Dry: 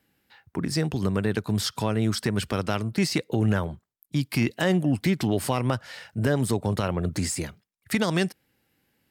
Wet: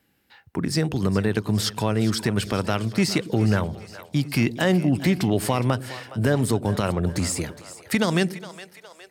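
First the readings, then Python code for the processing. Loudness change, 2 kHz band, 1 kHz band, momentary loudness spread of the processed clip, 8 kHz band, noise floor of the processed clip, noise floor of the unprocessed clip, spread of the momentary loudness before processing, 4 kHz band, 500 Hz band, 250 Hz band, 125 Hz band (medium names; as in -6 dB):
+2.5 dB, +2.5 dB, +2.5 dB, 11 LU, +2.5 dB, -56 dBFS, -75 dBFS, 7 LU, +2.5 dB, +2.5 dB, +3.0 dB, +2.5 dB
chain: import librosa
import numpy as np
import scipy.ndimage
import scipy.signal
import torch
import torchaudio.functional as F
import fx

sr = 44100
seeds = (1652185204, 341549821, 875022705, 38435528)

y = fx.echo_split(x, sr, split_hz=440.0, low_ms=103, high_ms=413, feedback_pct=52, wet_db=-14.5)
y = y * 10.0 ** (2.5 / 20.0)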